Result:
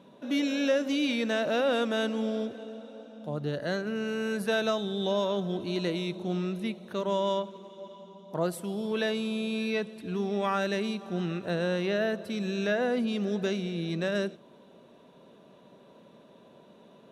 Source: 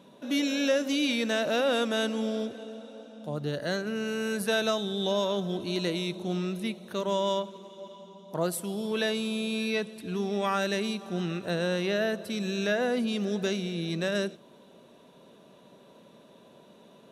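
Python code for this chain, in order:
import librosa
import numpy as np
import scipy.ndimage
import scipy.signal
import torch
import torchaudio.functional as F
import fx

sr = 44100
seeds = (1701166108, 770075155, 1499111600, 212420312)

y = fx.high_shelf(x, sr, hz=4600.0, db=-9.5)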